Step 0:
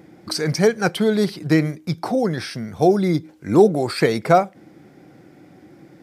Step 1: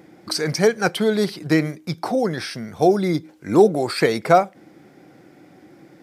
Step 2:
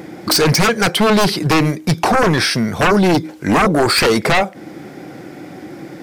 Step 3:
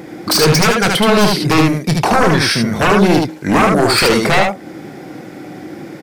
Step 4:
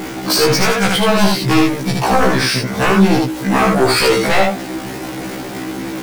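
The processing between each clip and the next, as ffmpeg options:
ffmpeg -i in.wav -af "lowshelf=frequency=190:gain=-7.5,volume=1dB" out.wav
ffmpeg -i in.wav -af "alimiter=limit=-9dB:level=0:latency=1:release=373,aeval=exprs='0.355*sin(PI/2*3.55*val(0)/0.355)':channel_layout=same" out.wav
ffmpeg -i in.wav -af "aecho=1:1:26|76:0.266|0.708" out.wav
ffmpeg -i in.wav -af "aeval=exprs='val(0)+0.5*0.119*sgn(val(0))':channel_layout=same,afftfilt=real='re*1.73*eq(mod(b,3),0)':imag='im*1.73*eq(mod(b,3),0)':win_size=2048:overlap=0.75,volume=-1dB" out.wav

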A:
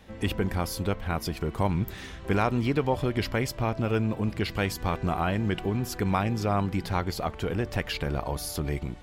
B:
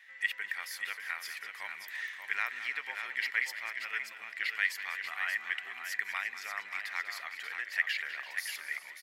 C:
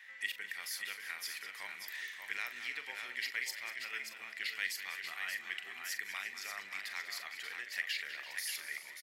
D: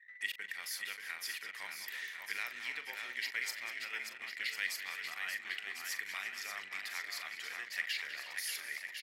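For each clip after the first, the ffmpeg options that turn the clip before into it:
ffmpeg -i in.wav -af "highpass=frequency=1900:width_type=q:width=8.4,aecho=1:1:196|338|584:0.224|0.178|0.447,volume=-8dB" out.wav
ffmpeg -i in.wav -filter_complex "[0:a]acrossover=split=490|3000[link_01][link_02][link_03];[link_02]acompressor=threshold=-56dB:ratio=2[link_04];[link_01][link_04][link_03]amix=inputs=3:normalize=0,asplit=2[link_05][link_06];[link_06]adelay=41,volume=-10.5dB[link_07];[link_05][link_07]amix=inputs=2:normalize=0,volume=2.5dB" out.wav
ffmpeg -i in.wav -filter_complex "[0:a]anlmdn=0.00398,asplit=2[link_01][link_02];[link_02]aecho=0:1:1051:0.376[link_03];[link_01][link_03]amix=inputs=2:normalize=0" out.wav

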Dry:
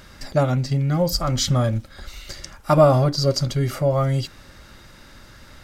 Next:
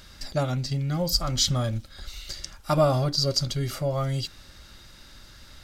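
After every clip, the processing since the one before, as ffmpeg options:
ffmpeg -i in.wav -af "equalizer=frequency=125:width_type=o:width=1:gain=-4,equalizer=frequency=250:width_type=o:width=1:gain=-4,equalizer=frequency=500:width_type=o:width=1:gain=-5,equalizer=frequency=1000:width_type=o:width=1:gain=-4,equalizer=frequency=2000:width_type=o:width=1:gain=-4,equalizer=frequency=4000:width_type=o:width=1:gain=4,volume=-1.5dB" out.wav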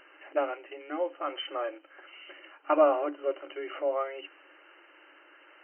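ffmpeg -i in.wav -af "afftfilt=real='re*between(b*sr/4096,290,3100)':imag='im*between(b*sr/4096,290,3100)':win_size=4096:overlap=0.75" out.wav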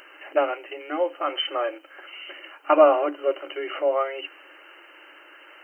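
ffmpeg -i in.wav -af "bass=frequency=250:gain=-6,treble=frequency=4000:gain=13,volume=7dB" out.wav

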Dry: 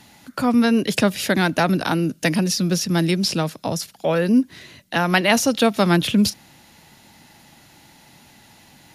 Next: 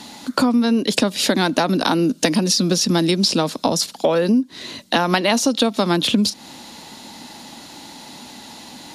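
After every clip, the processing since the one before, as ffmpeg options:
ffmpeg -i in.wav -af "equalizer=frequency=125:width_type=o:width=1:gain=-4,equalizer=frequency=250:width_type=o:width=1:gain=12,equalizer=frequency=500:width_type=o:width=1:gain=6,equalizer=frequency=1000:width_type=o:width=1:gain=9,equalizer=frequency=4000:width_type=o:width=1:gain=11,equalizer=frequency=8000:width_type=o:width=1:gain=8,acompressor=threshold=-16dB:ratio=10,volume=2dB" out.wav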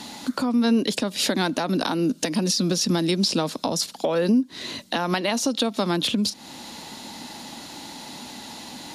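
ffmpeg -i in.wav -af "alimiter=limit=-12dB:level=0:latency=1:release=404" out.wav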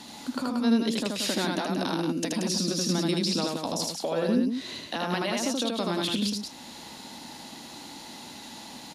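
ffmpeg -i in.wav -af "aecho=1:1:78.72|180.8:0.794|0.501,volume=-7dB" out.wav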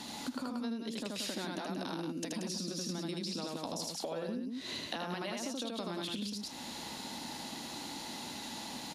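ffmpeg -i in.wav -af "acompressor=threshold=-35dB:ratio=12" out.wav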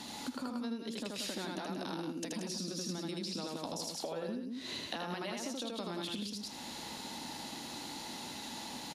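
ffmpeg -i in.wav -af "aecho=1:1:81:0.224,volume=-1dB" out.wav

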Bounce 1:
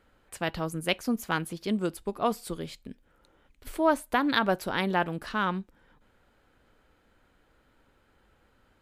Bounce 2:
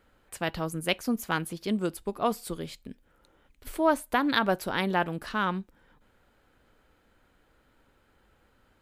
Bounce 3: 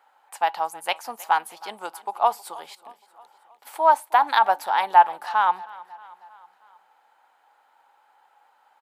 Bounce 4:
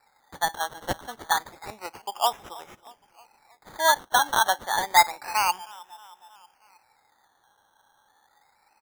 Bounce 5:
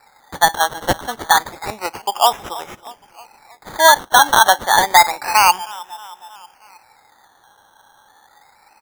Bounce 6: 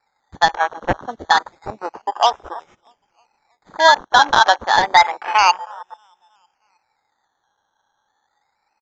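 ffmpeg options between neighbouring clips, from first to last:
ffmpeg -i in.wav -af "highshelf=frequency=12000:gain=5" out.wav
ffmpeg -i in.wav -af "highpass=frequency=840:width_type=q:width=9,aecho=1:1:316|632|948|1264:0.0891|0.0508|0.029|0.0165" out.wav
ffmpeg -i in.wav -af "acrusher=samples=14:mix=1:aa=0.000001:lfo=1:lforange=8.4:lforate=0.29,volume=-3.5dB" out.wav
ffmpeg -i in.wav -af "alimiter=level_in=13.5dB:limit=-1dB:release=50:level=0:latency=1,volume=-1dB" out.wav
ffmpeg -i in.wav -af "afwtdn=0.0631,aresample=16000,aresample=44100,volume=-1dB" out.wav

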